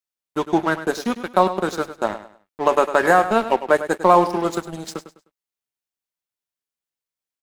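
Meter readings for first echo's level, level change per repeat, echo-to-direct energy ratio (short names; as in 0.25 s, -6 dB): -12.5 dB, -10.5 dB, -12.0 dB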